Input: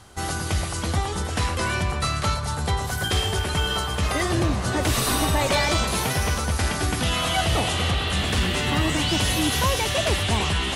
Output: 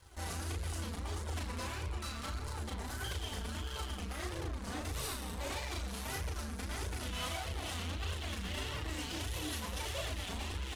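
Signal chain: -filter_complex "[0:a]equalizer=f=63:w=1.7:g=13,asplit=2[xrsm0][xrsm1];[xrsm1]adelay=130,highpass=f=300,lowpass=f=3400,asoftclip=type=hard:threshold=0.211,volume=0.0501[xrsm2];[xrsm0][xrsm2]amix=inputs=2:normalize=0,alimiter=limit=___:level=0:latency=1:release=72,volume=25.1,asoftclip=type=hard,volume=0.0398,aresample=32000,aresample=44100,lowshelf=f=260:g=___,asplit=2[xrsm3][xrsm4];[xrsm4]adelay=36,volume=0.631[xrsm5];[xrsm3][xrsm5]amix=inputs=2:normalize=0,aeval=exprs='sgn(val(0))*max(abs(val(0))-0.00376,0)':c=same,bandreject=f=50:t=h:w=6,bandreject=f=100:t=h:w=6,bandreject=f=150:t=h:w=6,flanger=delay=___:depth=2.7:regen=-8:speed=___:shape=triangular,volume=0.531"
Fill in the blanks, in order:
0.178, -2.5, 1.8, 1.6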